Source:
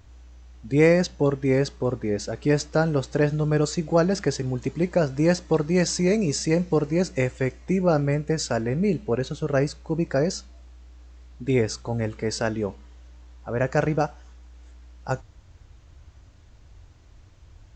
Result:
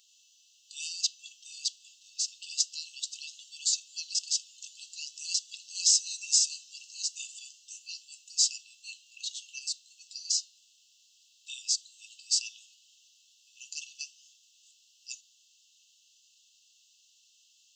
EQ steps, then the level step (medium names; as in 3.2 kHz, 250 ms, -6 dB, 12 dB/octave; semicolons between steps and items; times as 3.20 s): brick-wall FIR high-pass 2.6 kHz; treble shelf 3.8 kHz +9 dB; 0.0 dB